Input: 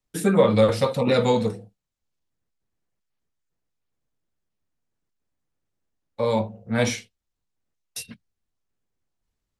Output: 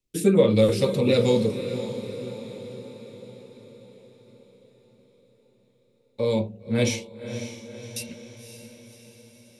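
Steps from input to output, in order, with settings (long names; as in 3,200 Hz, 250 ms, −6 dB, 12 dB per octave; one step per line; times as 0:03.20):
flat-topped bell 1,100 Hz −10.5 dB
hollow resonant body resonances 360/2,600 Hz, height 6 dB
on a send: feedback delay with all-pass diffusion 552 ms, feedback 56%, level −10.5 dB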